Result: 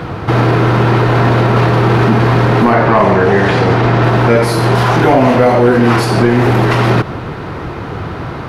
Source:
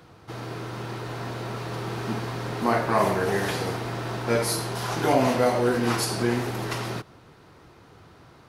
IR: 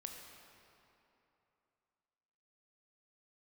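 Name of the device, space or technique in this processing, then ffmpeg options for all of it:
loud club master: -filter_complex "[0:a]acompressor=threshold=-28dB:ratio=2,asoftclip=type=hard:threshold=-21.5dB,alimiter=level_in=30dB:limit=-1dB:release=50:level=0:latency=1,asettb=1/sr,asplit=3[link_01][link_02][link_03];[link_01]atrim=end=2.744[link_04];[link_02]atrim=start=2.74:end=4.04,asetpts=PTS-STARTPTS,afade=type=in:duration=0.004:curve=qsin,afade=type=out:start_time=1.296:duration=0.004:curve=qsin,lowpass=7300[link_05];[link_03]atrim=start=4.036[link_06];[link_04][link_05]acrossfade=duration=0.004:curve1=hsin:curve2=qsin[link_07];[link_07][link_06]acrossfade=duration=0.004:curve1=qsin:curve2=hsin,bass=frequency=250:gain=2,treble=frequency=4000:gain=-15,volume=-2dB"

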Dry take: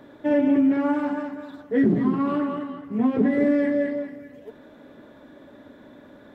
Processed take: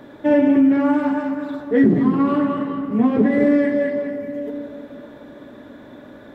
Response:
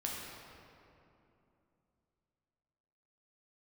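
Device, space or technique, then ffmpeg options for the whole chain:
compressed reverb return: -filter_complex "[0:a]asplit=2[link_01][link_02];[1:a]atrim=start_sample=2205[link_03];[link_02][link_03]afir=irnorm=-1:irlink=0,acompressor=threshold=-19dB:ratio=6,volume=-4.5dB[link_04];[link_01][link_04]amix=inputs=2:normalize=0,volume=2.5dB"

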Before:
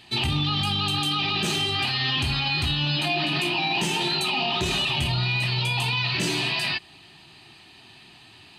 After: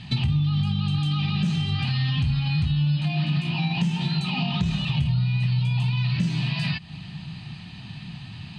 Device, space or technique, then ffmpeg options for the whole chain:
jukebox: -af "lowpass=6000,lowshelf=frequency=250:width_type=q:width=3:gain=12.5,acompressor=threshold=-28dB:ratio=4,volume=4dB"

